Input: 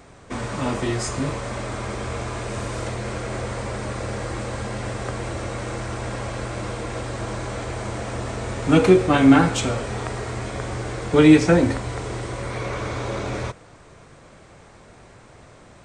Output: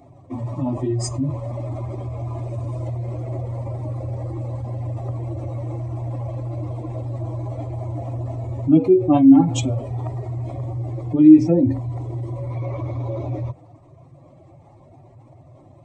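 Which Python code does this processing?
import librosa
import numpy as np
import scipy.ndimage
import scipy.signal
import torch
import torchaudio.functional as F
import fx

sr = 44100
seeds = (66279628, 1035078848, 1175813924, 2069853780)

y = fx.spec_expand(x, sr, power=2.0)
y = scipy.signal.sosfilt(scipy.signal.butter(2, 51.0, 'highpass', fs=sr, output='sos'), y)
y = fx.fixed_phaser(y, sr, hz=300.0, stages=8)
y = y * librosa.db_to_amplitude(3.5)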